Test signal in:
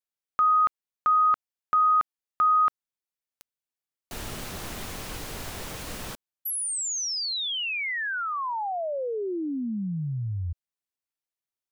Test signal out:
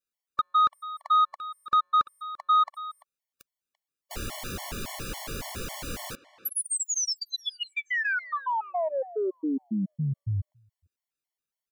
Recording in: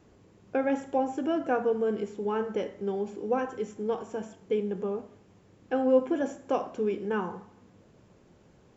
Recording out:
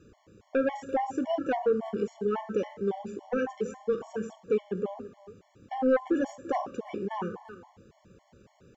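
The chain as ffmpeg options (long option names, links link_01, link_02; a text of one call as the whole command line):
ffmpeg -i in.wav -filter_complex "[0:a]asplit=2[link_01][link_02];[link_02]adelay=340,highpass=300,lowpass=3400,asoftclip=type=hard:threshold=-21.5dB,volume=-16dB[link_03];[link_01][link_03]amix=inputs=2:normalize=0,aeval=exprs='0.251*sin(PI/2*1.78*val(0)/0.251)':channel_layout=same,afftfilt=real='re*gt(sin(2*PI*3.6*pts/sr)*(1-2*mod(floor(b*sr/1024/580),2)),0)':imag='im*gt(sin(2*PI*3.6*pts/sr)*(1-2*mod(floor(b*sr/1024/580),2)),0)':win_size=1024:overlap=0.75,volume=-5.5dB" out.wav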